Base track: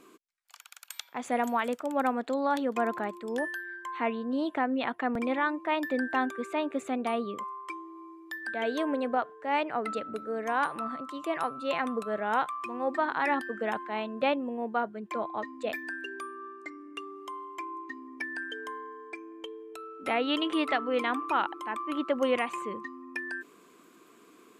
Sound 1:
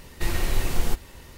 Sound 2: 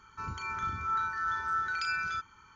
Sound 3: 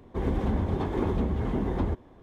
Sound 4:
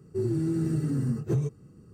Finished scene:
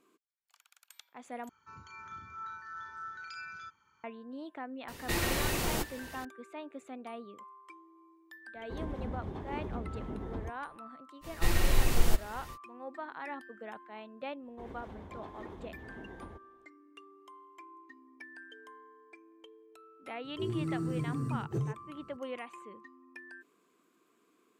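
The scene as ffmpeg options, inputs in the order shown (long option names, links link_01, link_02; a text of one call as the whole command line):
ffmpeg -i bed.wav -i cue0.wav -i cue1.wav -i cue2.wav -i cue3.wav -filter_complex "[1:a]asplit=2[link_01][link_02];[3:a]asplit=2[link_03][link_04];[0:a]volume=-13.5dB[link_05];[2:a]highpass=93[link_06];[link_01]highpass=frequency=140:poles=1[link_07];[link_03]aresample=32000,aresample=44100[link_08];[link_04]lowshelf=frequency=300:gain=-9.5[link_09];[link_05]asplit=2[link_10][link_11];[link_10]atrim=end=1.494[link_12];[link_06]atrim=end=2.55,asetpts=PTS-STARTPTS,volume=-12dB[link_13];[link_11]atrim=start=4.036[link_14];[link_07]atrim=end=1.37,asetpts=PTS-STARTPTS,afade=type=in:duration=0.004:curve=hsin,afade=type=out:start_time=1.366:duration=0.004:curve=hsin,adelay=4880[link_15];[link_08]atrim=end=2.22,asetpts=PTS-STARTPTS,volume=-12dB,afade=type=in:duration=0.004:curve=hsin,afade=type=out:start_time=2.216:duration=0.004:curve=hsin,adelay=8550[link_16];[link_02]atrim=end=1.37,asetpts=PTS-STARTPTS,volume=-2dB,afade=type=in:duration=0.05,afade=type=out:start_time=1.32:duration=0.05,adelay=11210[link_17];[link_09]atrim=end=2.22,asetpts=PTS-STARTPTS,volume=-14.5dB,afade=type=in:duration=0.004:curve=hsin,afade=type=out:start_time=2.216:duration=0.004:curve=hsin,adelay=14430[link_18];[4:a]atrim=end=1.93,asetpts=PTS-STARTPTS,volume=-7dB,afade=type=in:duration=0.004:curve=hsin,afade=type=out:start_time=1.926:duration=0.004:curve=hsin,adelay=20240[link_19];[link_12][link_13]acrossfade=duration=0.004:curve1=hsin:curve2=hsin[link_20];[link_20][link_14]acrossfade=duration=0.004:curve1=hsin:curve2=hsin[link_21];[link_21][link_15][link_16][link_17][link_18][link_19]amix=inputs=6:normalize=0" out.wav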